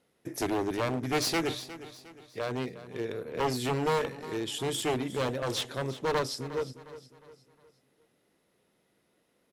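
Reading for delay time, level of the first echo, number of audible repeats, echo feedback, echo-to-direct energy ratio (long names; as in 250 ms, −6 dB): 358 ms, −15.0 dB, 3, 42%, −14.0 dB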